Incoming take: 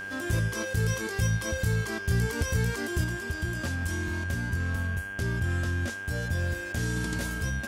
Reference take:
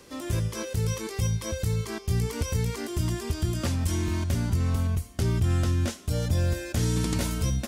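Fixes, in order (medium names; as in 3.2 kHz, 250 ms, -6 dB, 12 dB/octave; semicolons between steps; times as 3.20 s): clip repair -17.5 dBFS; de-hum 98.2 Hz, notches 34; band-stop 1.6 kHz, Q 30; gain correction +5 dB, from 3.04 s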